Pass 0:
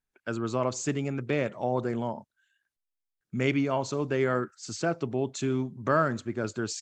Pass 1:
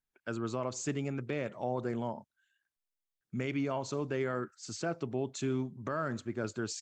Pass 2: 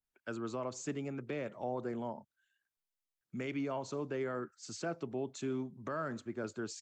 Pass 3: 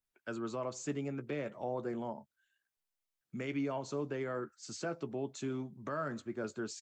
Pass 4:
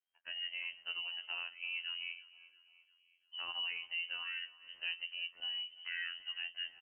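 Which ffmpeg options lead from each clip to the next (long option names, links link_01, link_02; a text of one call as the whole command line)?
ffmpeg -i in.wav -af "alimiter=limit=-19dB:level=0:latency=1:release=101,volume=-4.5dB" out.wav
ffmpeg -i in.wav -filter_complex "[0:a]acrossover=split=150|500|1800[link_01][link_02][link_03][link_04];[link_01]acompressor=threshold=-53dB:ratio=6[link_05];[link_05][link_02][link_03][link_04]amix=inputs=4:normalize=0,adynamicequalizer=threshold=0.00355:dfrequency=1600:dqfactor=0.7:tfrequency=1600:tqfactor=0.7:attack=5:release=100:ratio=0.375:range=2:mode=cutabove:tftype=highshelf,volume=-3dB" out.wav
ffmpeg -i in.wav -filter_complex "[0:a]asplit=2[link_01][link_02];[link_02]adelay=14,volume=-11dB[link_03];[link_01][link_03]amix=inputs=2:normalize=0" out.wav
ffmpeg -i in.wav -af "afftfilt=real='hypot(re,im)*cos(PI*b)':imag='0':win_size=2048:overlap=0.75,lowpass=frequency=2700:width_type=q:width=0.5098,lowpass=frequency=2700:width_type=q:width=0.6013,lowpass=frequency=2700:width_type=q:width=0.9,lowpass=frequency=2700:width_type=q:width=2.563,afreqshift=-3200,aecho=1:1:344|688|1032|1376:0.106|0.0551|0.0286|0.0149" out.wav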